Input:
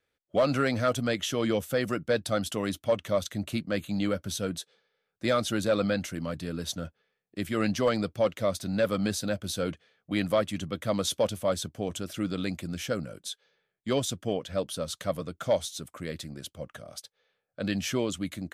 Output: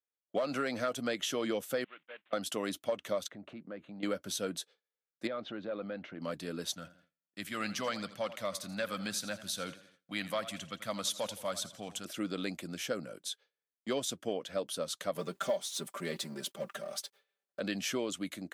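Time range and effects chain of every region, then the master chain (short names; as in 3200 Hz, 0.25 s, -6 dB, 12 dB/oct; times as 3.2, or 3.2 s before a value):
1.84–2.33 CVSD 16 kbps + differentiator
3.28–4.03 LPF 1600 Hz + compressor 3:1, threshold -39 dBFS
5.27–6.22 LPF 3700 Hz 24 dB/oct + high shelf 2700 Hz -11.5 dB + compressor 3:1, threshold -34 dBFS
6.73–12.05 bell 400 Hz -13 dB 1.3 oct + warbling echo 84 ms, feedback 48%, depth 74 cents, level -15.5 dB
15.15–17.6 G.711 law mismatch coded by mu + HPF 110 Hz + comb 5.1 ms, depth 74%
whole clip: gate with hold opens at -48 dBFS; HPF 250 Hz 12 dB/oct; compressor, threshold -27 dBFS; gain -2 dB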